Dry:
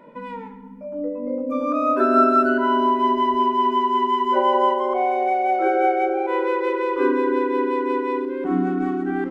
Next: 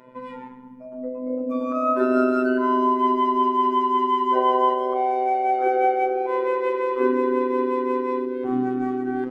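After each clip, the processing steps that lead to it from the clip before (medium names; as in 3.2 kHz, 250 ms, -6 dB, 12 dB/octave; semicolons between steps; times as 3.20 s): robot voice 127 Hz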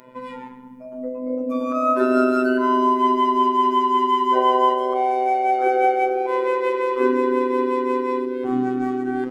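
treble shelf 3.4 kHz +9.5 dB; trim +1.5 dB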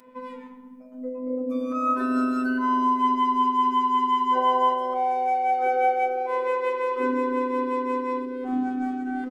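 comb 4 ms, depth 78%; trim -8 dB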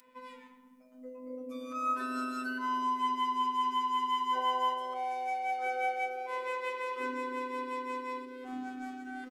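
tilt shelf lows -8.5 dB, about 1.3 kHz; trim -7 dB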